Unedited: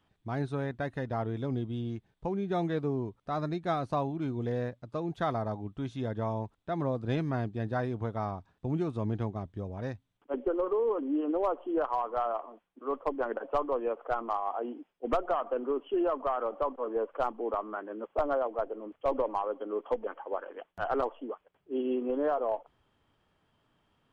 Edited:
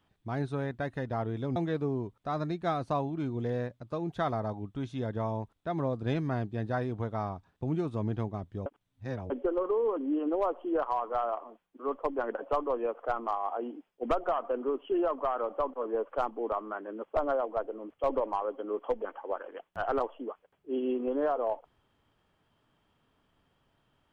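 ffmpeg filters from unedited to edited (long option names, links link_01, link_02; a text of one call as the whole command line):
ffmpeg -i in.wav -filter_complex "[0:a]asplit=4[link_01][link_02][link_03][link_04];[link_01]atrim=end=1.562[link_05];[link_02]atrim=start=2.578:end=9.682[link_06];[link_03]atrim=start=9.678:end=10.322,asetpts=PTS-STARTPTS,areverse[link_07];[link_04]atrim=start=10.318[link_08];[link_05][link_06]acrossfade=duration=0.004:curve1=hsin:curve2=hsin[link_09];[link_09][link_07]acrossfade=duration=0.004:curve1=hsin:curve2=hsin[link_10];[link_10][link_08]acrossfade=duration=0.004:curve1=hsin:curve2=hsin" out.wav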